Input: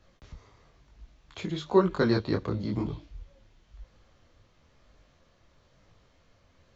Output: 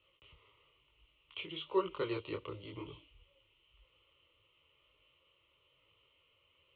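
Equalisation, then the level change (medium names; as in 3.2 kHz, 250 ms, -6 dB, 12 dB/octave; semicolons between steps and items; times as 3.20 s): high-pass 180 Hz 6 dB/octave; four-pole ladder low-pass 3.1 kHz, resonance 80%; static phaser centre 1.1 kHz, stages 8; +4.0 dB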